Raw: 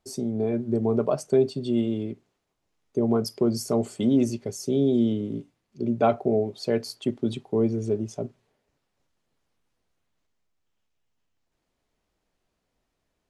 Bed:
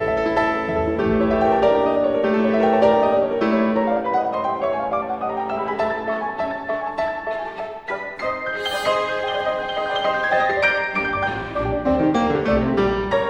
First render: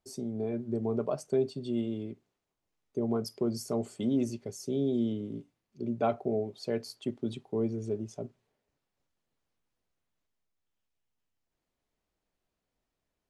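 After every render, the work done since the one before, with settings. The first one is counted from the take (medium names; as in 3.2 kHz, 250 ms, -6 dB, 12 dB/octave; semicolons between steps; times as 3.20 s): trim -7.5 dB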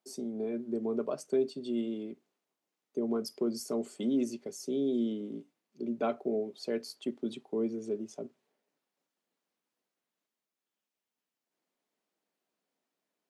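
dynamic bell 770 Hz, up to -6 dB, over -47 dBFS, Q 2.1; high-pass 200 Hz 24 dB/octave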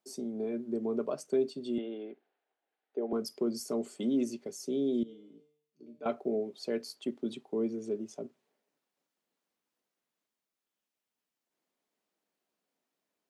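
1.78–3.13 s: cabinet simulation 360–3600 Hz, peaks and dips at 450 Hz +4 dB, 760 Hz +9 dB, 1.1 kHz -4 dB, 1.6 kHz +8 dB; 5.03–6.06 s: feedback comb 150 Hz, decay 0.62 s, mix 90%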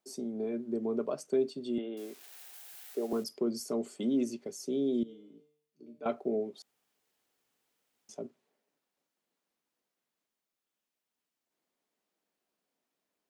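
1.97–3.24 s: zero-crossing glitches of -39 dBFS; 6.62–8.09 s: room tone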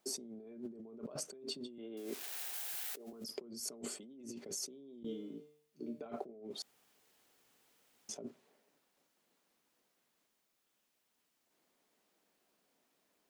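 peak limiter -27 dBFS, peak gain reduction 7.5 dB; compressor with a negative ratio -47 dBFS, ratio -1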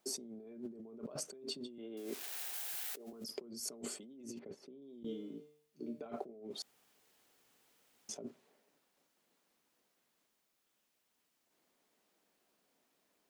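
4.39–4.82 s: distance through air 430 m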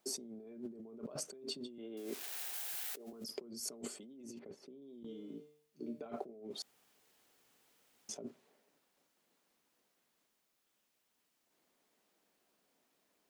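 3.87–5.29 s: compression 2.5:1, threshold -46 dBFS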